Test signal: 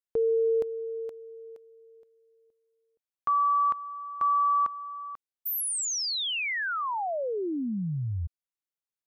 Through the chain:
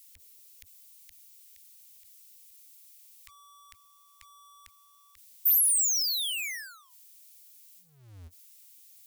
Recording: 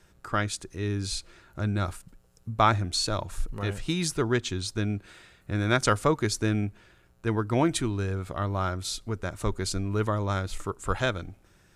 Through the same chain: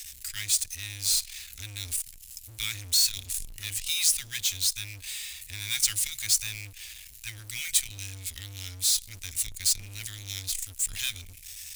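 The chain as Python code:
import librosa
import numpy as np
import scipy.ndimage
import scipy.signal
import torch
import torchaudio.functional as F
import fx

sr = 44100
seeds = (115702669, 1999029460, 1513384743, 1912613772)

y = scipy.signal.sosfilt(scipy.signal.cheby2(6, 80, [200.0, 910.0], 'bandstop', fs=sr, output='sos'), x)
y = fx.power_curve(y, sr, exponent=0.5)
y = F.preemphasis(torch.from_numpy(y), 0.9).numpy()
y = y * librosa.db_to_amplitude(4.0)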